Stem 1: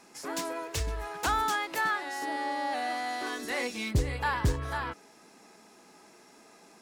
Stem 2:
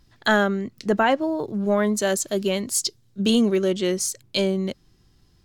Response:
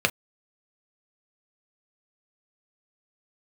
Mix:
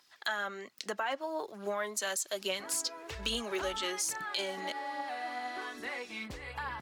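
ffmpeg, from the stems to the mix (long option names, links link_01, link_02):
-filter_complex "[0:a]acrossover=split=620|3800[link_01][link_02][link_03];[link_01]acompressor=threshold=-44dB:ratio=4[link_04];[link_02]acompressor=threshold=-30dB:ratio=4[link_05];[link_03]acompressor=threshold=-56dB:ratio=4[link_06];[link_04][link_05][link_06]amix=inputs=3:normalize=0,adelay=2350,volume=-4dB[link_07];[1:a]highpass=880,alimiter=limit=-18dB:level=0:latency=1:release=21,volume=1.5dB[link_08];[link_07][link_08]amix=inputs=2:normalize=0,acrossover=split=220[link_09][link_10];[link_10]acompressor=threshold=-35dB:ratio=2.5[link_11];[link_09][link_11]amix=inputs=2:normalize=0,aphaser=in_gain=1:out_gain=1:delay=4.5:decay=0.35:speed=1.2:type=triangular"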